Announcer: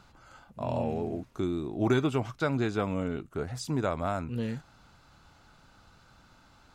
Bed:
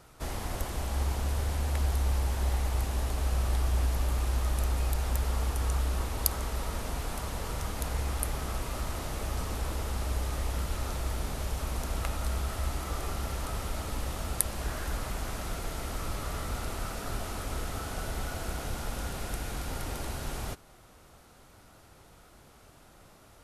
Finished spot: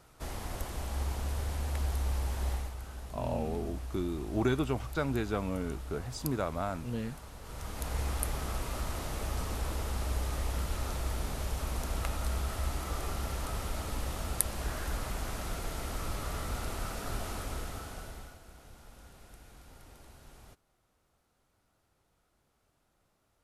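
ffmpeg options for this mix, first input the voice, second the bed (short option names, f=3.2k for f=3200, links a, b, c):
-filter_complex "[0:a]adelay=2550,volume=-3.5dB[a];[1:a]volume=7.5dB,afade=t=out:st=2.51:d=0.24:silence=0.354813,afade=t=in:st=7.41:d=0.6:silence=0.266073,afade=t=out:st=17.32:d=1.08:silence=0.141254[b];[a][b]amix=inputs=2:normalize=0"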